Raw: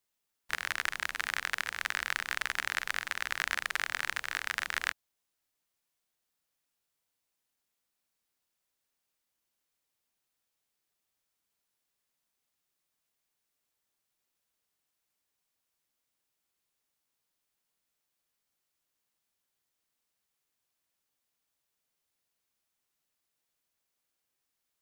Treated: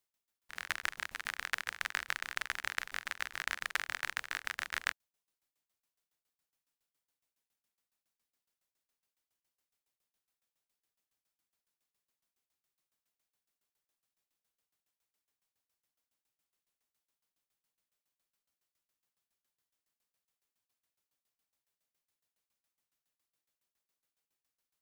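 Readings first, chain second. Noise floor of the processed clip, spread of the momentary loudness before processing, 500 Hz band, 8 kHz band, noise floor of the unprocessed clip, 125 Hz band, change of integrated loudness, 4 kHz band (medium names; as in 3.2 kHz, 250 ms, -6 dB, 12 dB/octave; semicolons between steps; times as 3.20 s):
under -85 dBFS, 3 LU, -4.5 dB, -4.5 dB, -84 dBFS, no reading, -4.5 dB, -4.5 dB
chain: tremolo saw down 7.2 Hz, depth 100%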